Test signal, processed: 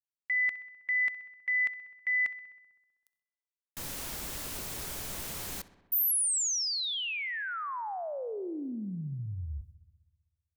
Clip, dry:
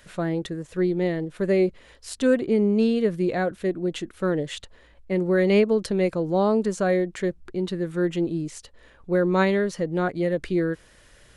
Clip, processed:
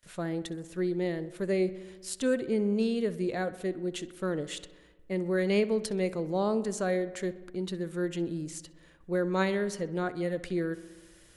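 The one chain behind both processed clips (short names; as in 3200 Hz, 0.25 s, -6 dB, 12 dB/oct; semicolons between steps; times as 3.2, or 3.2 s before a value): gate with hold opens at -45 dBFS; high shelf 5300 Hz +10.5 dB; on a send: darkening echo 64 ms, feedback 73%, low-pass 3700 Hz, level -16.5 dB; on the sum: gain -7.5 dB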